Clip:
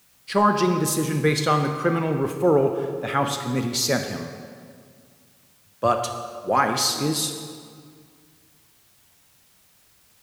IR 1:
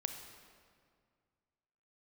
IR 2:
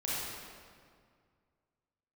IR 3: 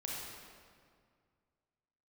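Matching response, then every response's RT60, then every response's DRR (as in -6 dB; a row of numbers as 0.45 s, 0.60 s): 1; 2.0 s, 2.0 s, 2.0 s; 5.5 dB, -8.5 dB, -4.5 dB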